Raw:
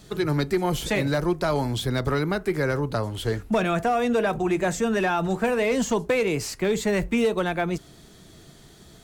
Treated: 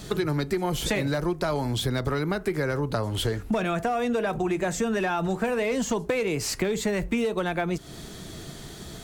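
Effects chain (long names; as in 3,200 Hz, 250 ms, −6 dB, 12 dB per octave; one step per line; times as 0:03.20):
downward compressor 6 to 1, threshold −33 dBFS, peak gain reduction 14 dB
level +9 dB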